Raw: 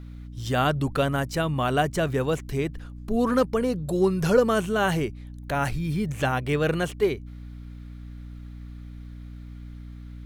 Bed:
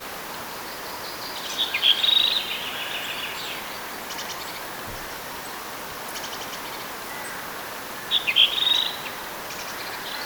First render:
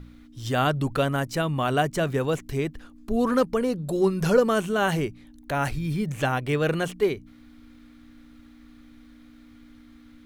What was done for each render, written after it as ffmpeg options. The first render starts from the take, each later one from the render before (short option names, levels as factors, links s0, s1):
-af "bandreject=f=60:t=h:w=4,bandreject=f=120:t=h:w=4,bandreject=f=180:t=h:w=4"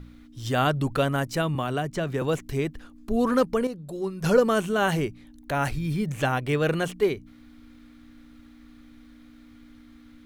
-filter_complex "[0:a]asettb=1/sr,asplit=3[s0][s1][s2];[s0]atrim=end=1.554[s3];[s1]atrim=start=1.55:end=2.22,asetpts=PTS-STARTPTS,afade=t=in:d=0.004:c=qsin,afade=t=out:st=0.666:d=0.004:c=qsin,acrossover=split=310|6600[s4][s5][s6];[s4]acompressor=threshold=0.0355:ratio=4[s7];[s5]acompressor=threshold=0.0447:ratio=4[s8];[s6]acompressor=threshold=0.002:ratio=4[s9];[s7][s8][s9]amix=inputs=3:normalize=0[s10];[s2]atrim=start=2.216[s11];[s3][s10]acrossfade=d=0.004:c1=hsin:c2=qsin[s12];[s12][s11]acrossfade=d=0.004:c1=qsin:c2=hsin,asplit=3[s13][s14][s15];[s13]atrim=end=3.672[s16];[s14]atrim=start=3.668:end=4.242,asetpts=PTS-STARTPTS,volume=0.376[s17];[s15]atrim=start=4.238[s18];[s16][s17]acrossfade=d=0.004:c1=hsin:c2=hsin[s19];[s19][s18]acrossfade=d=0.004:c1=hsin:c2=hsin"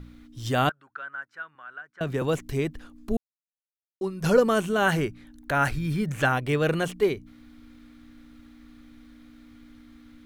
-filter_complex "[0:a]asettb=1/sr,asplit=3[s0][s1][s2];[s0]atrim=end=0.694[s3];[s1]atrim=start=0.69:end=2.01,asetpts=PTS-STARTPTS,afade=t=in:d=0.004:c=qsin,afade=t=out:st=1.316:d=0.004:c=qsin,bandpass=f=1500:t=q:w=9[s4];[s2]atrim=start=2.006[s5];[s3][s4]acrossfade=d=0.004:c1=hsin:c2=qsin[s6];[s6][s5]acrossfade=d=0.004:c1=qsin:c2=hsin,asettb=1/sr,asplit=3[s7][s8][s9];[s7]atrim=end=4.864[s10];[s8]atrim=start=4.86:end=6.33,asetpts=PTS-STARTPTS,afade=t=in:d=0.004:c=qsin,afade=t=out:st=1.466:d=0.004:c=qsin,equalizer=f=1500:w=2.4:g=7[s11];[s9]atrim=start=6.326[s12];[s10][s11]acrossfade=d=0.004:c1=hsin:c2=qsin[s13];[s13][s12]acrossfade=d=0.004:c1=qsin:c2=hsin,asplit=3[s14][s15][s16];[s14]atrim=end=3.17,asetpts=PTS-STARTPTS,afade=t=out:st=3.166:d=0.004:c=hsin[s17];[s15]atrim=start=3.17:end=4.01,asetpts=PTS-STARTPTS,volume=0[s18];[s16]atrim=start=4.01,asetpts=PTS-STARTPTS,afade=t=in:d=0.004:c=hsin[s19];[s17][s18][s19]concat=n=3:v=0:a=1"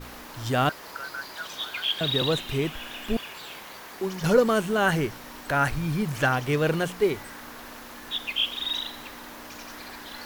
-filter_complex "[1:a]volume=0.355[s0];[0:a][s0]amix=inputs=2:normalize=0"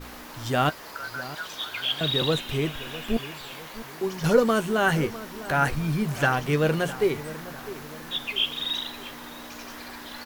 -filter_complex "[0:a]asplit=2[s0][s1];[s1]adelay=13,volume=0.282[s2];[s0][s2]amix=inputs=2:normalize=0,asplit=2[s3][s4];[s4]adelay=654,lowpass=f=2000:p=1,volume=0.178,asplit=2[s5][s6];[s6]adelay=654,lowpass=f=2000:p=1,volume=0.46,asplit=2[s7][s8];[s8]adelay=654,lowpass=f=2000:p=1,volume=0.46,asplit=2[s9][s10];[s10]adelay=654,lowpass=f=2000:p=1,volume=0.46[s11];[s3][s5][s7][s9][s11]amix=inputs=5:normalize=0"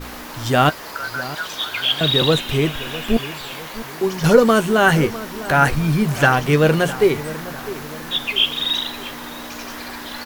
-af "volume=2.51,alimiter=limit=0.891:level=0:latency=1"